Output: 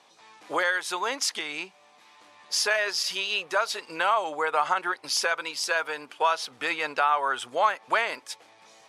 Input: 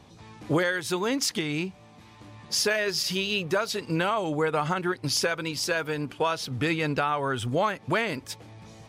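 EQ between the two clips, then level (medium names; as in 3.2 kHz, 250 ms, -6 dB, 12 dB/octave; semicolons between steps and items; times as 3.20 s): high-pass 680 Hz 12 dB/octave; low-pass 12 kHz 24 dB/octave; dynamic bell 930 Hz, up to +6 dB, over -40 dBFS, Q 0.81; 0.0 dB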